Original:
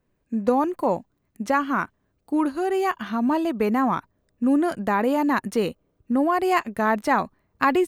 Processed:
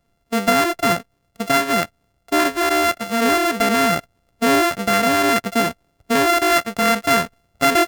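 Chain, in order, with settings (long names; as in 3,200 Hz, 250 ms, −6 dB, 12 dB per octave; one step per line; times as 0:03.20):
samples sorted by size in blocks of 64 samples
dynamic equaliser 1,700 Hz, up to +6 dB, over −36 dBFS, Q 1.6
in parallel at −3 dB: brickwall limiter −15 dBFS, peak gain reduction 10 dB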